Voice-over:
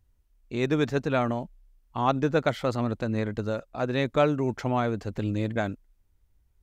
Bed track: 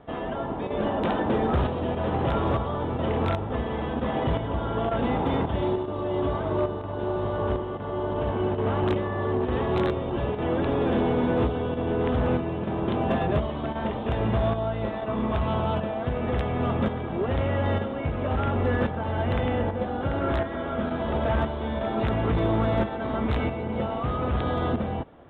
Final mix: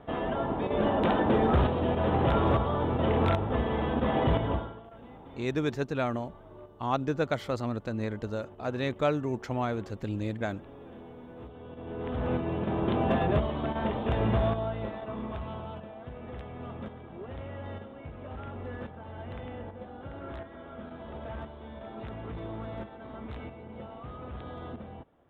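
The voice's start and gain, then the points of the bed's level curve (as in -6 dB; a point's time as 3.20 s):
4.85 s, -4.5 dB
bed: 4.53 s 0 dB
4.83 s -23.5 dB
11.33 s -23.5 dB
12.53 s -1.5 dB
14.34 s -1.5 dB
15.77 s -15 dB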